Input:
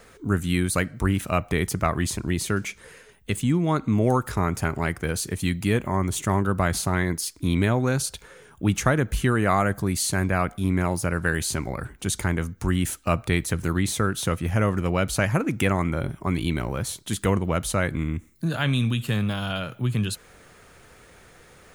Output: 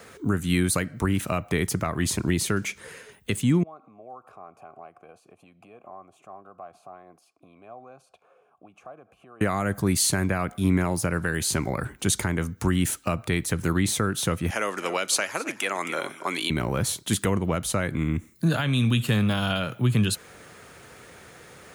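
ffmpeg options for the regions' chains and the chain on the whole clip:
ffmpeg -i in.wav -filter_complex "[0:a]asettb=1/sr,asplit=3[link_01][link_02][link_03];[link_01]atrim=end=3.634[link_04];[link_02]atrim=start=3.63:end=9.41,asetpts=PTS-STARTPTS,afade=type=in:duration=0.004:curve=qsin,afade=type=out:start_time=5.776:duration=0.004:curve=qsin,acompressor=threshold=-29dB:ratio=6:attack=3.2:release=140:knee=1:detection=peak,asplit=3[link_05][link_06][link_07];[link_05]bandpass=frequency=730:width_type=q:width=8,volume=0dB[link_08];[link_06]bandpass=frequency=1090:width_type=q:width=8,volume=-6dB[link_09];[link_07]bandpass=frequency=2440:width_type=q:width=8,volume=-9dB[link_10];[link_08][link_09][link_10]amix=inputs=3:normalize=0,equalizer=frequency=3600:width_type=o:width=2.1:gain=-10[link_11];[link_03]atrim=start=9.406[link_12];[link_04][link_11]acrossfade=duration=0.004:curve1=hsin:curve2=qsin[link_13];[link_13][link_12]acrossfade=duration=0.004:curve1=qsin:curve2=hsin,asettb=1/sr,asplit=3[link_14][link_15][link_16];[link_14]atrim=end=14.504[link_17];[link_15]atrim=start=14.5:end=16.5,asetpts=PTS-STARTPTS,afade=type=in:duration=0.004:curve=qsin,afade=type=out:start_time=1.996:duration=0.004:curve=qsin,highpass=320,lowpass=5900,aemphasis=mode=production:type=riaa,aecho=1:1:268:0.141,atrim=end_sample=88200[link_18];[link_16]atrim=start=16.496[link_19];[link_17][link_18]acrossfade=duration=0.004:curve1=hsin:curve2=qsin[link_20];[link_20][link_19]acrossfade=duration=0.004:curve1=qsin:curve2=hsin,highpass=89,alimiter=limit=-15dB:level=0:latency=1:release=345,acrossover=split=390|3000[link_21][link_22][link_23];[link_22]acompressor=threshold=-28dB:ratio=6[link_24];[link_21][link_24][link_23]amix=inputs=3:normalize=0,volume=4dB" out.wav

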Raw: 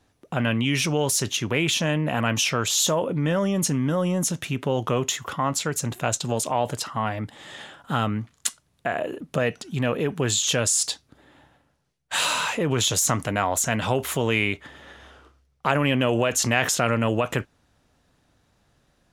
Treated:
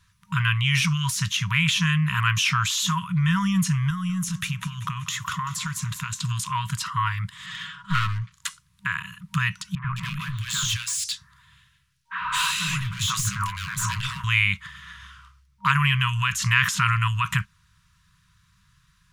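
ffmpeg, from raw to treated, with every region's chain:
ffmpeg -i in.wav -filter_complex "[0:a]asettb=1/sr,asplit=3[link_01][link_02][link_03];[link_01]atrim=end=3.904[link_04];[link_02]atrim=start=3.9:end=6.23,asetpts=PTS-STARTPTS,afade=type=in:duration=0.004:curve=qsin,afade=type=out:start_time=2.326:duration=0.004:curve=qsin,acompressor=threshold=-26dB:ratio=5:attack=3.2:release=140:knee=1:detection=peak,aecho=1:1:192|384|576|768|960:0.178|0.096|0.0519|0.028|0.0151,atrim=end_sample=102753[link_05];[link_03]atrim=start=6.226[link_06];[link_04][link_05]acrossfade=duration=0.004:curve1=hsin:curve2=qsin[link_07];[link_07][link_06]acrossfade=duration=0.004:curve1=qsin:curve2=hsin,asettb=1/sr,asplit=3[link_08][link_09][link_10];[link_08]atrim=end=7.464[link_11];[link_09]atrim=start=7.46:end=8.32,asetpts=PTS-STARTPTS,afade=type=in:duration=0.004:curve=qsin,afade=type=out:start_time=0.856:duration=0.004:curve=qsin,lowpass=5500,aecho=1:1:6.3:0.81,atrim=end_sample=37926,aeval=exprs='clip(val(0),-1,0.0237)':channel_layout=same[link_12];[link_10]atrim=start=8.316[link_13];[link_11][link_12]acrossfade=duration=0.004:curve1=hsin:curve2=qsin[link_14];[link_14][link_13]acrossfade=duration=0.004:curve1=qsin:curve2=hsin,asettb=1/sr,asplit=3[link_15][link_16][link_17];[link_15]atrim=end=9.754[link_18];[link_16]atrim=start=9.75:end=14.24,asetpts=PTS-STARTPTS,afade=type=in:duration=0.004:curve=qsin,afade=type=out:start_time=4.486:duration=0.004:curve=qsin,bandreject=frequency=60:width_type=h:width=6,bandreject=frequency=120:width_type=h:width=6,bandreject=frequency=180:width_type=h:width=6,bandreject=frequency=240:width_type=h:width=6,bandreject=frequency=300:width_type=h:width=6,bandreject=frequency=360:width_type=h:width=6,bandreject=frequency=420:width_type=h:width=6,bandreject=frequency=480:width_type=h:width=6,bandreject=frequency=540:width_type=h:width=6,bandreject=frequency=600:width_type=h:width=6,asoftclip=type=hard:threshold=-21.5dB,acrossover=split=170|1800[link_19][link_20][link_21];[link_19]adelay=90[link_22];[link_21]adelay=210[link_23];[link_22][link_20][link_23]amix=inputs=3:normalize=0,atrim=end_sample=198009[link_24];[link_17]atrim=start=14.236[link_25];[link_18][link_24]acrossfade=duration=0.004:curve1=hsin:curve2=qsin[link_26];[link_26][link_25]acrossfade=duration=0.004:curve1=qsin:curve2=hsin,afftfilt=real='re*(1-between(b*sr/4096,200,940))':imag='im*(1-between(b*sr/4096,200,940))':win_size=4096:overlap=0.75,acrossover=split=3200[link_27][link_28];[link_28]acompressor=threshold=-31dB:ratio=4:attack=1:release=60[link_29];[link_27][link_29]amix=inputs=2:normalize=0,volume=4.5dB" out.wav

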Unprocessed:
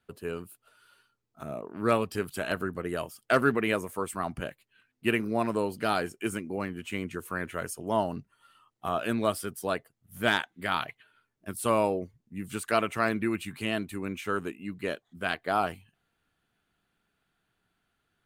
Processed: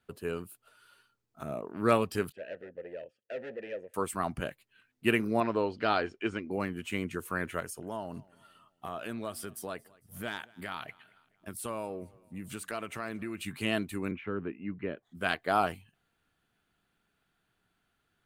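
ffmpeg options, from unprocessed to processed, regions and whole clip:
ffmpeg -i in.wav -filter_complex "[0:a]asettb=1/sr,asplit=3[link_01][link_02][link_03];[link_01]atrim=end=2.324[link_04];[link_02]atrim=start=2.32:end=3.94,asetpts=PTS-STARTPTS,afade=type=in:duration=0.004:curve=qsin,afade=type=out:start_time=1.616:duration=0.004:curve=qsin,aemphasis=mode=reproduction:type=bsi,asoftclip=type=hard:threshold=-24.5dB,asplit=3[link_05][link_06][link_07];[link_05]bandpass=frequency=530:width_type=q:width=8,volume=0dB[link_08];[link_06]bandpass=frequency=1840:width_type=q:width=8,volume=-6dB[link_09];[link_07]bandpass=frequency=2480:width_type=q:width=8,volume=-9dB[link_10];[link_08][link_09][link_10]amix=inputs=3:normalize=0[link_11];[link_03]atrim=start=3.936[link_12];[link_04][link_11]acrossfade=duration=0.004:curve1=hsin:curve2=qsin[link_13];[link_13][link_12]acrossfade=duration=0.004:curve1=qsin:curve2=hsin,asettb=1/sr,asplit=3[link_14][link_15][link_16];[link_14]atrim=end=5.404[link_17];[link_15]atrim=start=5.4:end=6.51,asetpts=PTS-STARTPTS,afade=type=in:duration=0.004:curve=qsin,afade=type=out:start_time=1.106:duration=0.004:curve=qsin,lowpass=frequency=4800:width=0.5412,lowpass=frequency=4800:width=1.3066,equalizer=frequency=160:width_type=o:width=0.71:gain=-8.5[link_18];[link_16]atrim=start=6.506[link_19];[link_17][link_18]acrossfade=duration=0.004:curve1=hsin:curve2=qsin[link_20];[link_20][link_19]acrossfade=duration=0.004:curve1=qsin:curve2=hsin,asettb=1/sr,asplit=3[link_21][link_22][link_23];[link_21]atrim=end=7.604[link_24];[link_22]atrim=start=7.6:end=13.41,asetpts=PTS-STARTPTS,afade=type=in:duration=0.004:curve=qsin,afade=type=out:start_time=5.806:duration=0.004:curve=qsin,acompressor=threshold=-38dB:ratio=2.5:attack=3.2:release=140:knee=1:detection=peak,aecho=1:1:225|450|675:0.0631|0.0297|0.0139,atrim=end_sample=256221[link_25];[link_23]atrim=start=13.406[link_26];[link_24][link_25]acrossfade=duration=0.004:curve1=hsin:curve2=qsin[link_27];[link_27][link_26]acrossfade=duration=0.004:curve1=qsin:curve2=hsin,asettb=1/sr,asplit=3[link_28][link_29][link_30];[link_28]atrim=end=14.114[link_31];[link_29]atrim=start=14.11:end=15.03,asetpts=PTS-STARTPTS,afade=type=in:duration=0.004:curve=qsin,afade=type=out:start_time=0.916:duration=0.004:curve=qsin,lowpass=frequency=2300:width=0.5412,lowpass=frequency=2300:width=1.3066,acrossover=split=440|3000[link_32][link_33][link_34];[link_33]acompressor=threshold=-46dB:ratio=2.5:attack=3.2:release=140:knee=2.83:detection=peak[link_35];[link_32][link_35][link_34]amix=inputs=3:normalize=0[link_36];[link_30]atrim=start=15.026[link_37];[link_31][link_36]acrossfade=duration=0.004:curve1=hsin:curve2=qsin[link_38];[link_38][link_37]acrossfade=duration=0.004:curve1=qsin:curve2=hsin" out.wav

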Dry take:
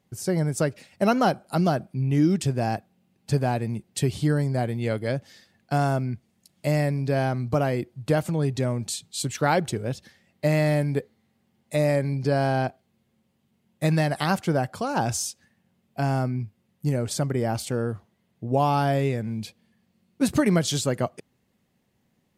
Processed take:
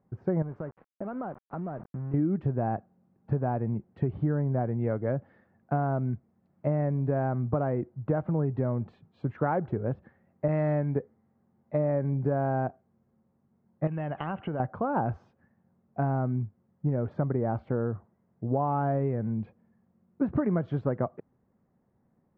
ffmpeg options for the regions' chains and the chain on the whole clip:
ffmpeg -i in.wav -filter_complex "[0:a]asettb=1/sr,asplit=3[link_01][link_02][link_03];[link_01]atrim=end=0.424[link_04];[link_02]atrim=start=0.42:end=2.14,asetpts=PTS-STARTPTS,afade=type=in:duration=0.004:curve=qsin,afade=type=out:start_time=1.716:duration=0.004:curve=qsin,acompressor=threshold=-31dB:ratio=16:attack=3.2:release=140:knee=1:detection=peak,aeval=exprs='val(0)*gte(abs(val(0)),0.0075)':channel_layout=same[link_05];[link_03]atrim=start=2.136[link_06];[link_04][link_05]acrossfade=duration=0.004:curve1=hsin:curve2=qsin[link_07];[link_07][link_06]acrossfade=duration=0.004:curve1=qsin:curve2=hsin,asettb=1/sr,asplit=3[link_08][link_09][link_10];[link_08]atrim=end=10.484[link_11];[link_09]atrim=start=10.48:end=10.96,asetpts=PTS-STARTPTS,afade=type=in:duration=0.004:curve=qsin,afade=type=out:start_time=0.476:duration=0.004:curve=qsin,agate=range=-33dB:threshold=-24dB:ratio=3:release=100:detection=peak,highshelf=frequency=2400:gain=12[link_12];[link_10]atrim=start=10.956[link_13];[link_11][link_12]acrossfade=duration=0.004:curve1=hsin:curve2=qsin[link_14];[link_14][link_13]acrossfade=duration=0.004:curve1=qsin:curve2=hsin,asettb=1/sr,asplit=3[link_15][link_16][link_17];[link_15]atrim=end=13.874[link_18];[link_16]atrim=start=13.87:end=14.6,asetpts=PTS-STARTPTS,afade=type=in:duration=0.004:curve=qsin,afade=type=out:start_time=0.726:duration=0.004:curve=qsin,acompressor=threshold=-28dB:ratio=10:attack=3.2:release=140:knee=1:detection=peak,lowpass=frequency=2900:width_type=q:width=15[link_19];[link_17]atrim=start=14.596[link_20];[link_18][link_19]acrossfade=duration=0.004:curve1=hsin:curve2=qsin[link_21];[link_21][link_20]acrossfade=duration=0.004:curve1=qsin:curve2=hsin,lowpass=frequency=1400:width=0.5412,lowpass=frequency=1400:width=1.3066,acompressor=threshold=-23dB:ratio=6" out.wav

